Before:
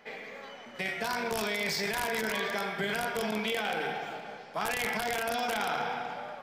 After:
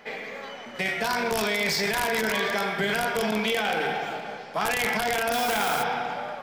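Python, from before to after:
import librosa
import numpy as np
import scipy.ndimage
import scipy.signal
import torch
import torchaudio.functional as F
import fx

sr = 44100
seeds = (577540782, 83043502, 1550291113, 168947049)

p1 = np.clip(10.0 ** (32.0 / 20.0) * x, -1.0, 1.0) / 10.0 ** (32.0 / 20.0)
p2 = x + (p1 * 10.0 ** (-6.0 / 20.0))
p3 = fx.dmg_noise_colour(p2, sr, seeds[0], colour='white', level_db=-39.0, at=(5.32, 5.82), fade=0.02)
y = p3 * 10.0 ** (3.5 / 20.0)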